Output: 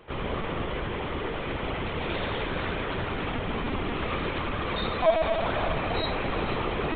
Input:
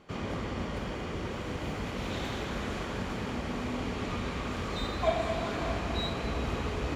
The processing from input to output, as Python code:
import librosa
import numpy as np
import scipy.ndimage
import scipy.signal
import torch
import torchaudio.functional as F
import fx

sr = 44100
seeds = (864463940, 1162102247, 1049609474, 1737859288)

y = fx.low_shelf(x, sr, hz=200.0, db=-8.0)
y = fx.echo_feedback(y, sr, ms=476, feedback_pct=55, wet_db=-18.0)
y = fx.lpc_vocoder(y, sr, seeds[0], excitation='pitch_kept', order=16)
y = y * 10.0 ** (7.0 / 20.0)